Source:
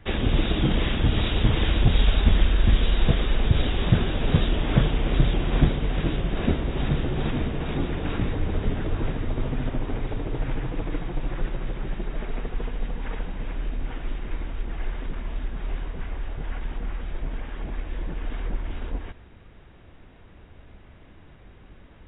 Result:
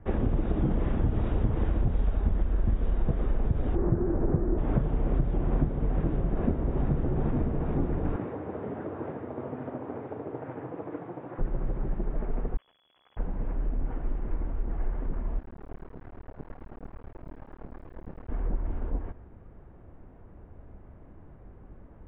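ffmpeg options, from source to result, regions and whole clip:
-filter_complex "[0:a]asettb=1/sr,asplit=3[s0][s1][s2];[s0]atrim=end=3.754[s3];[s1]atrim=start=3.75:end=4.58,asetpts=PTS-STARTPTS,afade=t=in:d=0.004:c=qsin,afade=t=out:st=0.826:d=0.004:c=qsin,lowpass=f=1800:w=0.5412,lowpass=f=1800:w=1.3066,equalizer=f=350:w=5.4:g=13.5[s4];[s2]atrim=start=4.576[s5];[s3][s4]acrossfade=d=0.004:c1=hsin:c2=qsin[s6];[s6][s5]acrossfade=d=0.004:c1=qsin:c2=hsin,asettb=1/sr,asplit=3[s7][s8][s9];[s7]atrim=end=8.164[s10];[s8]atrim=start=8.16:end=11.39,asetpts=PTS-STARTPTS,afade=t=in:d=0.004:c=qsin,afade=t=out:st=3.226:d=0.004:c=qsin,highpass=f=97:w=0.5412,highpass=f=97:w=1.3066,bass=f=250:g=-12,treble=f=4000:g=-6,asplit=2[s11][s12];[s12]adelay=40,volume=0.266[s13];[s11][s13]amix=inputs=2:normalize=0,atrim=end_sample=142443[s14];[s9]atrim=start=11.386[s15];[s10][s14]acrossfade=d=0.004:c1=hsin:c2=qsin[s16];[s16][s15]acrossfade=d=0.004:c1=qsin:c2=hsin,asettb=1/sr,asplit=3[s17][s18][s19];[s17]atrim=end=12.574[s20];[s18]atrim=start=12.57:end=13.17,asetpts=PTS-STARTPTS,afade=t=in:d=0.004:c=qsin,afade=t=out:st=0.596:d=0.004:c=qsin,aeval=exprs='(tanh(200*val(0)+0.6)-tanh(0.6))/200':c=same,lowpass=f=2900:t=q:w=0.5098,lowpass=f=2900:t=q:w=0.6013,lowpass=f=2900:t=q:w=0.9,lowpass=f=2900:t=q:w=2.563,afreqshift=-3400[s21];[s19]atrim=start=13.166[s22];[s20][s21]acrossfade=d=0.004:c1=hsin:c2=qsin[s23];[s23][s22]acrossfade=d=0.004:c1=qsin:c2=hsin,asettb=1/sr,asplit=3[s24][s25][s26];[s24]atrim=end=15.394[s27];[s25]atrim=start=15.39:end=18.29,asetpts=PTS-STARTPTS,afade=t=in:d=0.004:c=qsin,afade=t=out:st=2.896:d=0.004:c=qsin,highpass=f=89:p=1,tremolo=f=8.9:d=0.59,acrusher=bits=5:dc=4:mix=0:aa=0.000001[s28];[s26]atrim=start=18.286[s29];[s27][s28]acrossfade=d=0.004:c1=hsin:c2=qsin[s30];[s30][s29]acrossfade=d=0.004:c1=qsin:c2=hsin,lowpass=1100,aemphasis=mode=reproduction:type=75kf,acompressor=threshold=0.0891:ratio=6"

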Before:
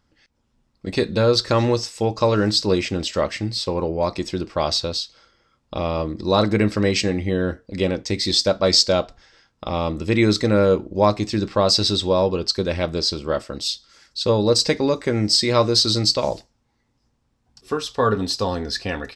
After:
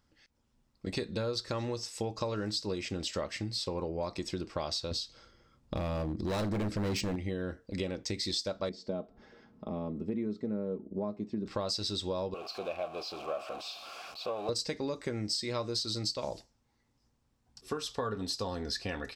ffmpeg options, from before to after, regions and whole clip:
-filter_complex "[0:a]asettb=1/sr,asplit=3[s0][s1][s2];[s0]atrim=end=4.914[s3];[s1]atrim=start=4.91:end=7.16,asetpts=PTS-STARTPTS,afade=t=in:d=0.004:c=qsin,afade=t=out:st=2.246:d=0.004:c=qsin,lowshelf=f=470:g=10,volume=5.62,asoftclip=hard,volume=0.178[s4];[s2]atrim=start=7.156[s5];[s3][s4]acrossfade=d=0.004:c1=hsin:c2=qsin[s6];[s6][s5]acrossfade=d=0.004:c1=qsin:c2=hsin,asettb=1/sr,asplit=3[s7][s8][s9];[s7]atrim=end=8.694[s10];[s8]atrim=start=8.69:end=11.46,asetpts=PTS-STARTPTS,afade=t=in:d=0.004:c=qsin,afade=t=out:st=2.766:d=0.004:c=qsin,bandpass=f=250:t=q:w=1,aecho=1:1:4.7:0.47,atrim=end_sample=122157,acompressor=mode=upward:threshold=0.0158:ratio=2.5:attack=3.2:release=140:knee=2.83:detection=peak[s11];[s9]atrim=start=11.456[s12];[s10][s11]acrossfade=d=0.004:c1=hsin:c2=qsin[s13];[s13][s12]acrossfade=d=0.004:c1=qsin:c2=hsin,asettb=1/sr,asplit=3[s14][s15][s16];[s14]atrim=end=12.344[s17];[s15]atrim=start=12.34:end=14.49,asetpts=PTS-STARTPTS,afade=t=in:d=0.004:c=qsin,afade=t=out:st=2.146:d=0.004:c=qsin,aeval=exprs='val(0)+0.5*0.0708*sgn(val(0))':c=same,acontrast=62,asplit=3[s18][s19][s20];[s18]bandpass=f=730:t=q:w=8,volume=1[s21];[s19]bandpass=f=1090:t=q:w=8,volume=0.501[s22];[s20]bandpass=f=2440:t=q:w=8,volume=0.355[s23];[s21][s22][s23]amix=inputs=3:normalize=0[s24];[s16]atrim=start=14.486[s25];[s17][s24]acrossfade=d=0.004:c1=hsin:c2=qsin[s26];[s26][s25]acrossfade=d=0.004:c1=qsin:c2=hsin,highshelf=f=7400:g=6,acompressor=threshold=0.0501:ratio=5,volume=0.501"

